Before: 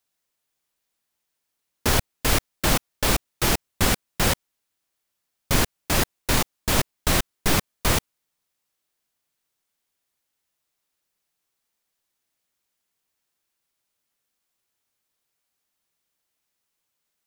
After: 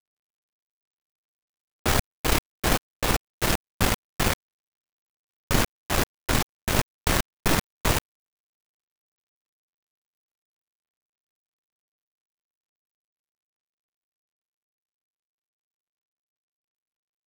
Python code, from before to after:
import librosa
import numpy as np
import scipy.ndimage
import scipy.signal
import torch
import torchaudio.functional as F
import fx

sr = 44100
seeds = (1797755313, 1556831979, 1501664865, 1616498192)

y = fx.dead_time(x, sr, dead_ms=0.19)